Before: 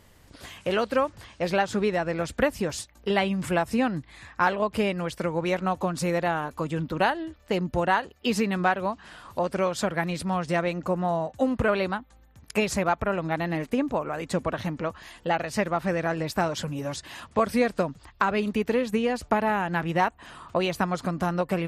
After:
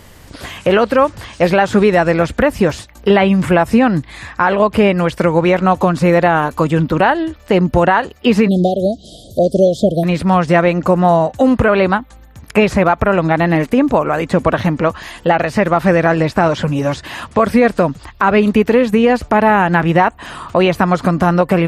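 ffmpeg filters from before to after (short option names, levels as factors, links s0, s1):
-filter_complex "[0:a]asettb=1/sr,asplit=3[s0][s1][s2];[s0]atrim=end=1.334[s3];[s1]atrim=start=1.33:end=2.17,asetpts=PTS-STARTPTS,afade=t=in:d=0.004:c=qsin,afade=t=out:st=0.836:d=0.004:c=qsin,highshelf=f=5800:g=11.5[s4];[s2]atrim=start=2.166[s5];[s3][s4]acrossfade=d=0.004:c1=hsin:c2=qsin[s6];[s6][s5]acrossfade=d=0.004:c1=qsin:c2=hsin,asplit=3[s7][s8][s9];[s7]afade=t=out:st=8.47:d=0.02[s10];[s8]asuperstop=centerf=1500:order=20:qfactor=0.59,afade=t=in:st=8.47:d=0.02,afade=t=out:st=10.03:d=0.02[s11];[s9]afade=t=in:st=10.03:d=0.02[s12];[s10][s11][s12]amix=inputs=3:normalize=0,asettb=1/sr,asplit=3[s13][s14][s15];[s13]atrim=end=16.044[s16];[s14]atrim=start=16.04:end=17,asetpts=PTS-STARTPTS,afade=t=in:d=0.004:c=qsin,afade=t=out:st=0.956:d=0.004:c=qsin,lowpass=9500[s17];[s15]atrim=start=16.996[s18];[s16][s17]acrossfade=d=0.004:c1=hsin:c2=qsin[s19];[s19][s18]acrossfade=d=0.004:c1=qsin:c2=hsin,acrossover=split=2800[s20][s21];[s21]acompressor=threshold=0.00355:ratio=4:attack=1:release=60[s22];[s20][s22]amix=inputs=2:normalize=0,alimiter=level_in=6.31:limit=0.891:release=50:level=0:latency=1,volume=0.891"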